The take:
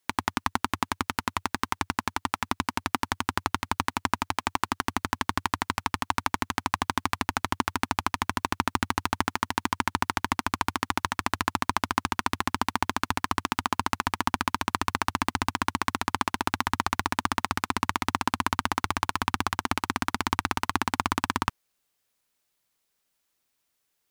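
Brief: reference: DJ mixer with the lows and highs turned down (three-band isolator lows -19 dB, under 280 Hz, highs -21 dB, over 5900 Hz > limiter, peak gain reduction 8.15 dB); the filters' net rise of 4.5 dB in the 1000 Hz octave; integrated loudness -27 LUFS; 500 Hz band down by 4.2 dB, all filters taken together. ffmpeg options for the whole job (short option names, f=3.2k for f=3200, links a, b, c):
-filter_complex "[0:a]acrossover=split=280 5900:gain=0.112 1 0.0891[a][b][c];[a][b][c]amix=inputs=3:normalize=0,equalizer=f=500:t=o:g=-8,equalizer=f=1k:t=o:g=7,volume=5dB,alimiter=limit=-8dB:level=0:latency=1"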